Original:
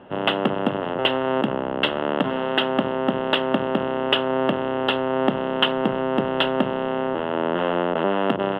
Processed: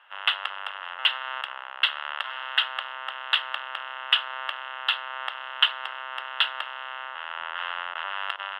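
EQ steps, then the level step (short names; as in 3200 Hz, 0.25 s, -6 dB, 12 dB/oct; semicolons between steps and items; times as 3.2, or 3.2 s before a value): HPF 1200 Hz 24 dB/oct; dynamic EQ 4200 Hz, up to +4 dB, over -41 dBFS, Q 2.4; 0.0 dB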